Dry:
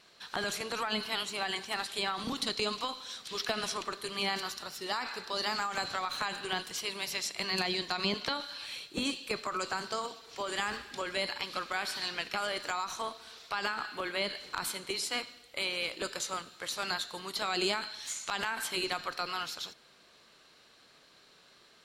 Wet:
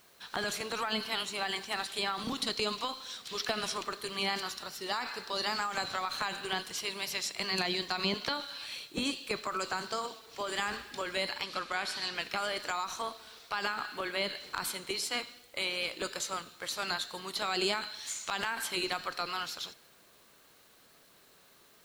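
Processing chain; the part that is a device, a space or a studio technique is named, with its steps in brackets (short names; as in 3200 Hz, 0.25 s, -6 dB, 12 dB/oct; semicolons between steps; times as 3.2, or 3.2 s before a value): plain cassette with noise reduction switched in (mismatched tape noise reduction decoder only; wow and flutter 28 cents; white noise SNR 28 dB); 11.44–12.15 LPF 11000 Hz 12 dB/oct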